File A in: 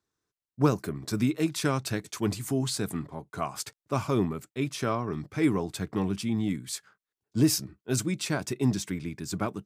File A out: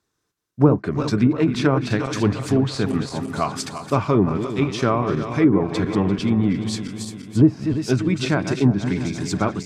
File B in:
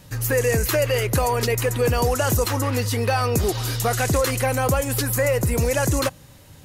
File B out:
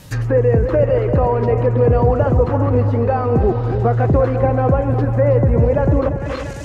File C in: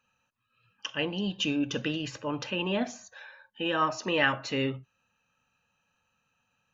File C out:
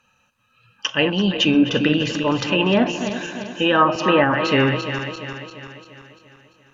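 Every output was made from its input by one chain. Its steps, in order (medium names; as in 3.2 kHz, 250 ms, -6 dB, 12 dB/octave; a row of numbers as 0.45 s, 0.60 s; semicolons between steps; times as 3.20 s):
backward echo that repeats 172 ms, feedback 71%, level -9 dB; low-pass that closes with the level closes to 830 Hz, closed at -19.5 dBFS; peak normalisation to -3 dBFS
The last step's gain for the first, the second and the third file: +8.5 dB, +6.5 dB, +12.0 dB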